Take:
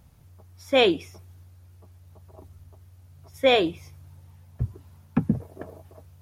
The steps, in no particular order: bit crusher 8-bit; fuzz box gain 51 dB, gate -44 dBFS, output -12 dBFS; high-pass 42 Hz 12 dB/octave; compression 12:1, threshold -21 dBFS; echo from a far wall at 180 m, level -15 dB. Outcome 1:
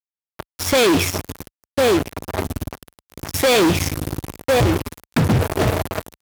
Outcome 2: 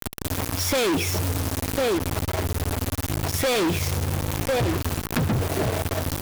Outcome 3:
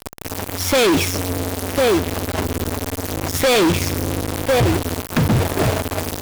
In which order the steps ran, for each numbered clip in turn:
echo from a far wall > compression > fuzz box > bit crusher > high-pass; high-pass > bit crusher > echo from a far wall > fuzz box > compression; echo from a far wall > compression > bit crusher > high-pass > fuzz box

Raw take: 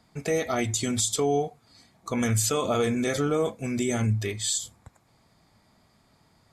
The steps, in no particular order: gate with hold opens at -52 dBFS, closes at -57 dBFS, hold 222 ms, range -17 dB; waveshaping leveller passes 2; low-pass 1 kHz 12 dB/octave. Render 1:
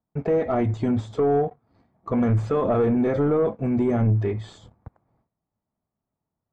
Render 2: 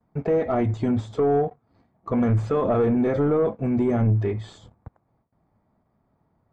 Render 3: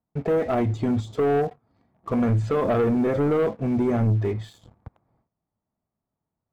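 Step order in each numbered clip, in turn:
waveshaping leveller > low-pass > gate with hold; gate with hold > waveshaping leveller > low-pass; low-pass > gate with hold > waveshaping leveller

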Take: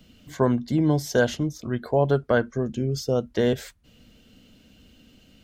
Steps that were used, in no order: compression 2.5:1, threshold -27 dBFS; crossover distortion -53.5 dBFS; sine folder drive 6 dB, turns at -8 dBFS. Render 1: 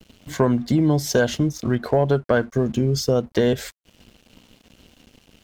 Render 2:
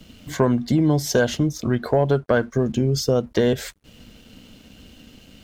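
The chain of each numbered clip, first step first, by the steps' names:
crossover distortion > compression > sine folder; compression > sine folder > crossover distortion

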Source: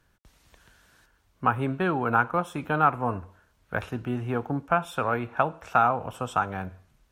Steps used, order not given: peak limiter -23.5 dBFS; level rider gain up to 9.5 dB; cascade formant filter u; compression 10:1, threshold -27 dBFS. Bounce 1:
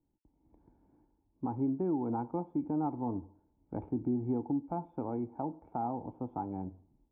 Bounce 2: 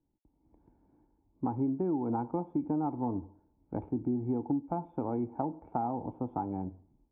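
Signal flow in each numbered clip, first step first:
level rider > cascade formant filter > compression > peak limiter; cascade formant filter > peak limiter > level rider > compression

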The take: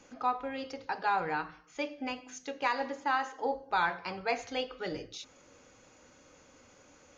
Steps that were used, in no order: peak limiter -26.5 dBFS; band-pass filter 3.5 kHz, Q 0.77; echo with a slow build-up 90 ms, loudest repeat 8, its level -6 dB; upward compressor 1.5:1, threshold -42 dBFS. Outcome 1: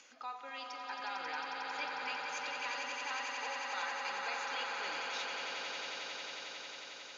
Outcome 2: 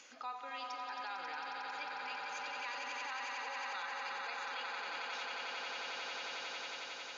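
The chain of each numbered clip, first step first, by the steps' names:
peak limiter > echo with a slow build-up > upward compressor > band-pass filter; echo with a slow build-up > peak limiter > band-pass filter > upward compressor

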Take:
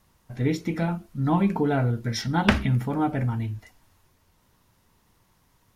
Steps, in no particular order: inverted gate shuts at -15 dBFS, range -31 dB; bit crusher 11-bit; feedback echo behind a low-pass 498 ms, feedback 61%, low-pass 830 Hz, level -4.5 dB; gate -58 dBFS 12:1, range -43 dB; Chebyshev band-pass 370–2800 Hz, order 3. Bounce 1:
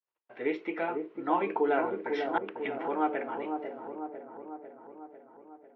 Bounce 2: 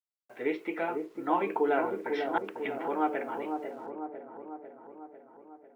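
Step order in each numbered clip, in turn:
bit crusher > gate > Chebyshev band-pass > inverted gate > feedback echo behind a low-pass; gate > Chebyshev band-pass > inverted gate > bit crusher > feedback echo behind a low-pass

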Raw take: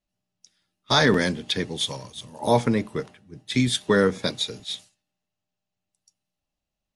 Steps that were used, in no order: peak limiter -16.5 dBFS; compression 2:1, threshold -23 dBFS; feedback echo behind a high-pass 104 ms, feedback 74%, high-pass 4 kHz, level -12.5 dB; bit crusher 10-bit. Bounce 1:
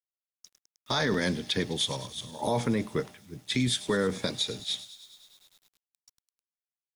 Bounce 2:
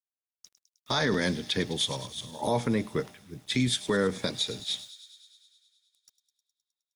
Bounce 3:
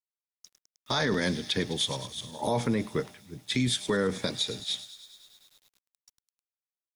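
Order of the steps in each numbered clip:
peak limiter > compression > feedback echo behind a high-pass > bit crusher; bit crusher > compression > feedback echo behind a high-pass > peak limiter; feedback echo behind a high-pass > bit crusher > peak limiter > compression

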